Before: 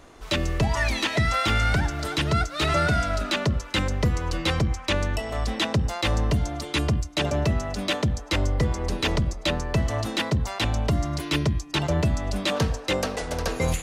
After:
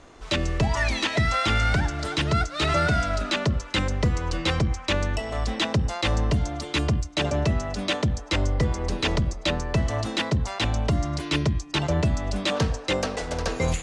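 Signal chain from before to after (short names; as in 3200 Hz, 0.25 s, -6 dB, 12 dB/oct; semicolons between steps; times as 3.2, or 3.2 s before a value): LPF 8800 Hz 24 dB/oct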